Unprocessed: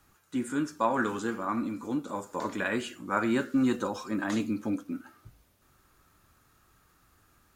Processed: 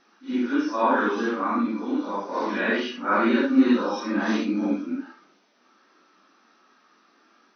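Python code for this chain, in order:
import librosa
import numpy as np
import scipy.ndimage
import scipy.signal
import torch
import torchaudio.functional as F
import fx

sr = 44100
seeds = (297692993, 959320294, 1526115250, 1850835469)

y = fx.phase_scramble(x, sr, seeds[0], window_ms=200)
y = fx.brickwall_bandpass(y, sr, low_hz=190.0, high_hz=6200.0)
y = F.gain(torch.from_numpy(y), 7.0).numpy()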